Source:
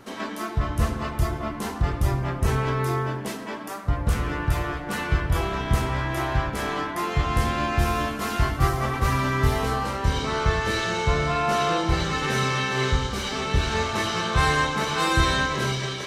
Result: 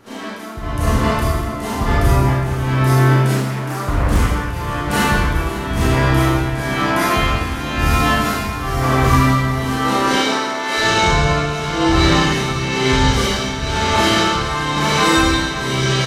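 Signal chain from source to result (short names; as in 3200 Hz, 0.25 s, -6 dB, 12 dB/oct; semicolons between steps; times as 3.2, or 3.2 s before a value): 9.55–10.77 HPF 140 Hz -> 500 Hz 24 dB/oct; AGC gain up to 9 dB; limiter -9.5 dBFS, peak gain reduction 7.5 dB; tremolo 1 Hz, depth 74%; echo 0.556 s -14 dB; Schroeder reverb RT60 0.94 s, combs from 27 ms, DRR -7.5 dB; 3.36–4.19 Doppler distortion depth 0.5 ms; gain -1.5 dB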